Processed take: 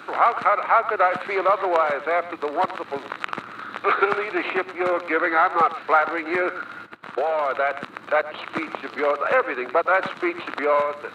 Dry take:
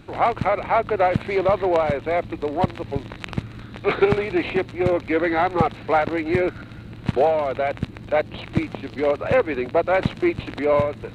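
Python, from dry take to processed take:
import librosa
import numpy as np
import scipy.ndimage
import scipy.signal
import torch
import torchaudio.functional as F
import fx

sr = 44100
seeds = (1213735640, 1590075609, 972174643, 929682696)

y = scipy.signal.sosfilt(scipy.signal.butter(2, 400.0, 'highpass', fs=sr, output='sos'), x)
y = fx.peak_eq(y, sr, hz=1300.0, db=13.5, octaves=0.79)
y = fx.level_steps(y, sr, step_db=21, at=(6.85, 7.49), fade=0.02)
y = y + 10.0 ** (-16.0 / 20.0) * np.pad(y, (int(108 * sr / 1000.0), 0))[:len(y)]
y = fx.band_squash(y, sr, depth_pct=40)
y = y * librosa.db_to_amplitude(-3.0)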